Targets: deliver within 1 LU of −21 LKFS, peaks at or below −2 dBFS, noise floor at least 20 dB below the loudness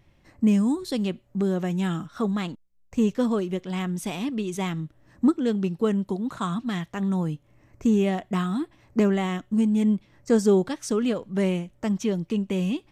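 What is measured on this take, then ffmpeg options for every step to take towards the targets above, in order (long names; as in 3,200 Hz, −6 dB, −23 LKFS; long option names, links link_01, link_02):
integrated loudness −25.5 LKFS; sample peak −9.0 dBFS; target loudness −21.0 LKFS
→ -af "volume=4.5dB"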